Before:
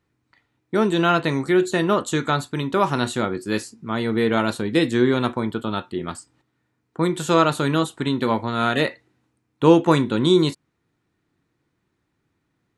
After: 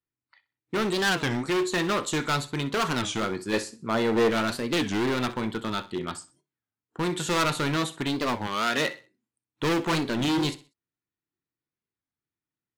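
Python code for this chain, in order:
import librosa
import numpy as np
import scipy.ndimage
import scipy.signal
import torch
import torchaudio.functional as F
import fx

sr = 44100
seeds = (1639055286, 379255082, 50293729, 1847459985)

p1 = fx.lowpass(x, sr, hz=3200.0, slope=6)
p2 = np.clip(p1, -10.0 ** (-19.5 / 20.0), 10.0 ** (-19.5 / 20.0))
p3 = fx.noise_reduce_blind(p2, sr, reduce_db=20)
p4 = fx.peak_eq(p3, sr, hz=610.0, db=9.0, octaves=1.5, at=(3.53, 4.3))
p5 = fx.highpass(p4, sr, hz=fx.line((8.48, 450.0), (8.88, 110.0)), slope=12, at=(8.48, 8.88), fade=0.02)
p6 = fx.high_shelf(p5, sr, hz=2000.0, db=11.0)
p7 = p6 + fx.echo_feedback(p6, sr, ms=63, feedback_pct=31, wet_db=-16.5, dry=0)
p8 = fx.record_warp(p7, sr, rpm=33.33, depth_cents=250.0)
y = p8 * 10.0 ** (-4.0 / 20.0)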